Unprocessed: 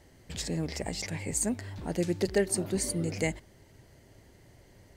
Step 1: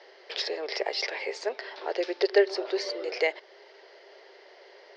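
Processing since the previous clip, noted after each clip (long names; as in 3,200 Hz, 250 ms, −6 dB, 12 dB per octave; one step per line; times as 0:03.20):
in parallel at +0.5 dB: downward compressor, threshold −38 dBFS, peak gain reduction 16 dB
on the sum: Chebyshev band-pass filter 390–5,300 Hz, order 5
level +5 dB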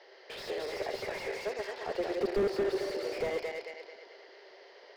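feedback delay that plays each chunk backwards 110 ms, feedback 64%, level −3.5 dB
slew-rate limiting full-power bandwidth 37 Hz
level −4 dB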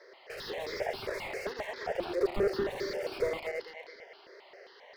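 step-sequenced phaser 7.5 Hz 790–2,800 Hz
level +4 dB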